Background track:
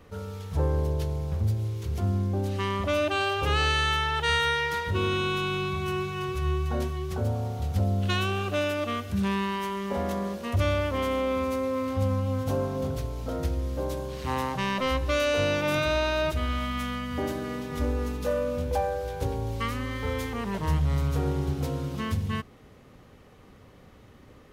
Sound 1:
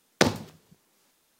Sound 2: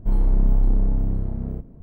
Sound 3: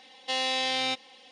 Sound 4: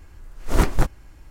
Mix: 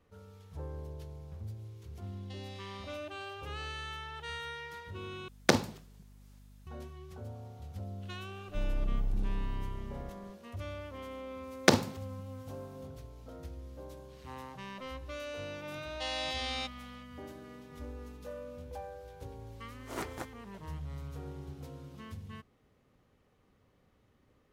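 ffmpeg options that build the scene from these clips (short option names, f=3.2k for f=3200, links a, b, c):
-filter_complex "[3:a]asplit=2[a][b];[1:a]asplit=2[c][d];[0:a]volume=-16.5dB[e];[a]acompressor=threshold=-34dB:ratio=6:attack=3.2:release=140:knee=1:detection=peak[f];[c]aeval=exprs='val(0)+0.00282*(sin(2*PI*50*n/s)+sin(2*PI*2*50*n/s)/2+sin(2*PI*3*50*n/s)/3+sin(2*PI*4*50*n/s)/4+sin(2*PI*5*50*n/s)/5)':c=same[g];[4:a]highpass=290[h];[e]asplit=2[i][j];[i]atrim=end=5.284[k];[g]atrim=end=1.39,asetpts=PTS-STARTPTS,volume=-3.5dB[l];[j]atrim=start=6.666[m];[f]atrim=end=1.31,asetpts=PTS-STARTPTS,volume=-15dB,afade=t=in:d=0.004:c=hsin,afade=t=out:st=1.306:d=0.004:c=hsin,adelay=2020[n];[2:a]atrim=end=1.82,asetpts=PTS-STARTPTS,volume=-14dB,afade=t=in:d=0.004:c=hsin,afade=t=out:st=1.816:d=0.004:c=hsin,adelay=8490[o];[d]atrim=end=1.39,asetpts=PTS-STARTPTS,volume=-1.5dB,afade=t=in:d=0.004:c=hsin,afade=t=out:st=1.386:d=0.004:c=hsin,adelay=11470[p];[b]atrim=end=1.31,asetpts=PTS-STARTPTS,volume=-8.5dB,afade=t=in:d=0.004:c=hsin,afade=t=out:st=1.306:d=0.004:c=hsin,adelay=693252S[q];[h]atrim=end=1.3,asetpts=PTS-STARTPTS,volume=-14dB,afade=t=in:d=0.004:c=hsin,afade=t=out:st=1.296:d=0.004:c=hsin,adelay=19390[r];[k][l]acrossfade=d=0.004:c1=hsin:c2=hsin[s];[s][m]acrossfade=d=0.004:c1=hsin:c2=hsin[t];[t][n][o][p][q][r]amix=inputs=6:normalize=0"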